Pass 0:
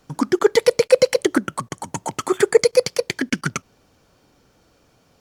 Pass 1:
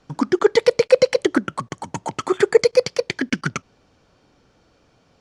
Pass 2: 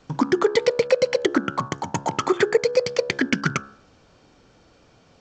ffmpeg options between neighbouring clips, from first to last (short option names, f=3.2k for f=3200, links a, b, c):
-af "lowpass=5.6k"
-af "bandreject=f=69.6:t=h:w=4,bandreject=f=139.2:t=h:w=4,bandreject=f=208.8:t=h:w=4,bandreject=f=278.4:t=h:w=4,bandreject=f=348:t=h:w=4,bandreject=f=417.6:t=h:w=4,bandreject=f=487.2:t=h:w=4,bandreject=f=556.8:t=h:w=4,bandreject=f=626.4:t=h:w=4,bandreject=f=696:t=h:w=4,bandreject=f=765.6:t=h:w=4,bandreject=f=835.2:t=h:w=4,bandreject=f=904.8:t=h:w=4,bandreject=f=974.4:t=h:w=4,bandreject=f=1.044k:t=h:w=4,bandreject=f=1.1136k:t=h:w=4,bandreject=f=1.1832k:t=h:w=4,bandreject=f=1.2528k:t=h:w=4,bandreject=f=1.3224k:t=h:w=4,bandreject=f=1.392k:t=h:w=4,bandreject=f=1.4616k:t=h:w=4,bandreject=f=1.5312k:t=h:w=4,bandreject=f=1.6008k:t=h:w=4,bandreject=f=1.6704k:t=h:w=4,bandreject=f=1.74k:t=h:w=4,acompressor=threshold=-19dB:ratio=4,volume=3.5dB" -ar 16000 -c:a g722